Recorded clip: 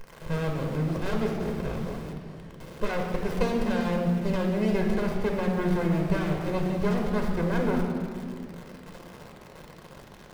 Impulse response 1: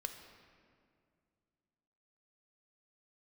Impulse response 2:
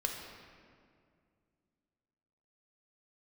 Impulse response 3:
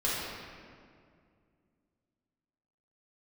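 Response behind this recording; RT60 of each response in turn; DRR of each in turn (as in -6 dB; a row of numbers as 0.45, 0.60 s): 2; 2.2, 2.2, 2.2 s; 6.0, 1.5, -8.5 dB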